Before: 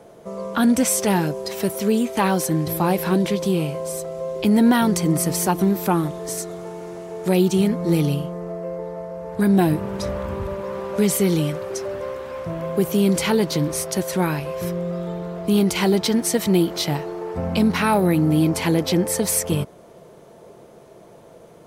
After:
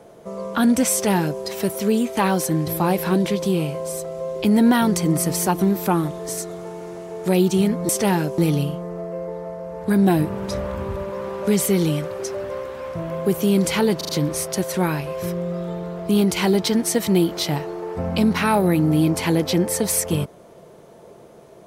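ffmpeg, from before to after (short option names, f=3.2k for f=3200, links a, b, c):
-filter_complex "[0:a]asplit=6[a][b][c][d][e][f];[a]atrim=end=7.892[g];[b]atrim=start=0.918:end=1.412[h];[c]atrim=start=7.888:end=13.522[i];[d]atrim=start=13.478:end=13.522[j];[e]atrim=start=13.478:end=13.522[k];[f]atrim=start=13.478[l];[g][h]acrossfade=d=0.004:c1=hsin:c2=hsin[m];[m][i]acrossfade=d=0.004:c1=hsin:c2=hsin[n];[n][j]acrossfade=d=0.004:c1=hsin:c2=hsin[o];[o][k]acrossfade=d=0.004:c1=hsin:c2=hsin[p];[p][l]acrossfade=d=0.004:c1=hsin:c2=hsin"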